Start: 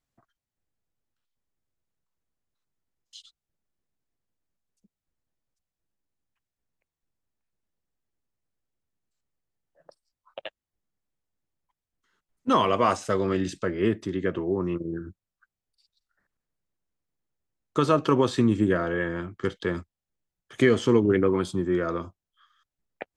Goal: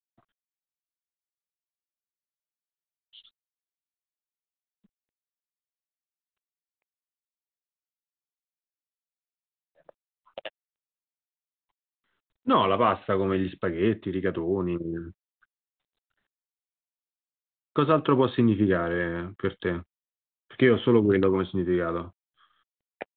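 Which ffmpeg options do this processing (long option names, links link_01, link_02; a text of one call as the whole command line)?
ffmpeg -i in.wav -ar 8000 -c:a adpcm_g726 -b:a 40k out.wav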